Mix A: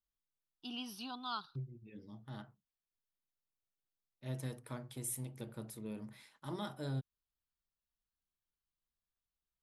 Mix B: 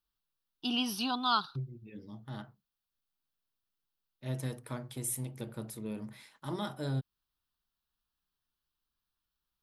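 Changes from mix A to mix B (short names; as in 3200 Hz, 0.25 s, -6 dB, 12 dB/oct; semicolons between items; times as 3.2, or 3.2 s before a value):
first voice +12.0 dB; second voice +5.0 dB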